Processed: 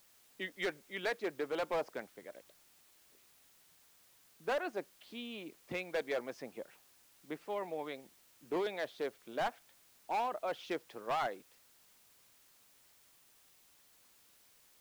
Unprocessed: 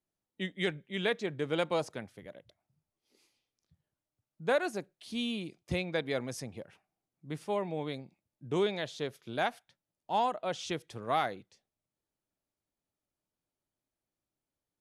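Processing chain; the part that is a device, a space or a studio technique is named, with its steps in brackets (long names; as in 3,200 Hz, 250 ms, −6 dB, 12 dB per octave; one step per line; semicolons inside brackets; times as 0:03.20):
harmonic and percussive parts rebalanced harmonic −7 dB
aircraft radio (band-pass filter 320–2,400 Hz; hard clipping −31.5 dBFS, distortion −10 dB; white noise bed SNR 24 dB)
level +1.5 dB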